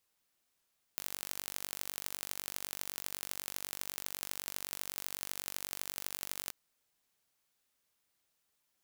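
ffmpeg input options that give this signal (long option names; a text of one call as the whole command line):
ffmpeg -f lavfi -i "aevalsrc='0.355*eq(mod(n,919),0)*(0.5+0.5*eq(mod(n,3676),0))':duration=5.53:sample_rate=44100" out.wav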